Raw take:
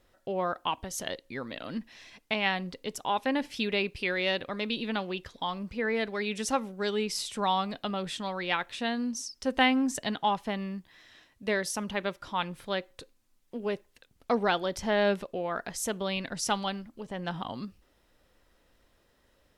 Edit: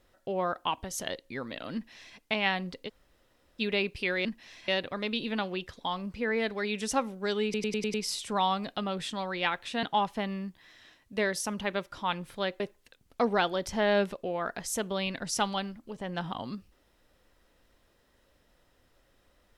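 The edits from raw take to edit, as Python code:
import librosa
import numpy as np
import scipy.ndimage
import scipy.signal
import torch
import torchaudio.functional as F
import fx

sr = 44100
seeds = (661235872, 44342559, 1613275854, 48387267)

y = fx.edit(x, sr, fx.duplicate(start_s=1.74, length_s=0.43, to_s=4.25),
    fx.room_tone_fill(start_s=2.88, length_s=0.72, crossfade_s=0.04),
    fx.stutter(start_s=7.01, slice_s=0.1, count=6),
    fx.cut(start_s=8.9, length_s=1.23),
    fx.cut(start_s=12.9, length_s=0.8), tone=tone)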